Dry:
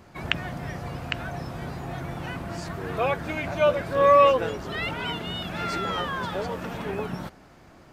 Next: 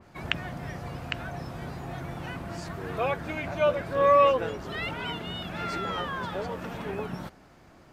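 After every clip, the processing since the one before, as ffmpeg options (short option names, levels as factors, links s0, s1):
-af "adynamicequalizer=threshold=0.00891:dfrequency=3400:dqfactor=0.7:tfrequency=3400:tqfactor=0.7:attack=5:release=100:ratio=0.375:range=1.5:mode=cutabove:tftype=highshelf,volume=0.708"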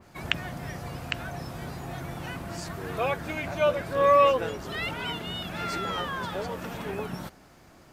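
-af "highshelf=f=5300:g=9.5"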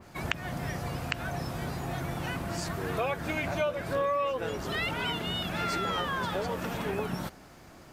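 -af "acompressor=threshold=0.0355:ratio=6,volume=1.33"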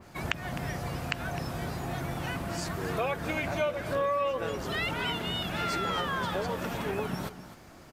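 -af "aecho=1:1:258:0.2"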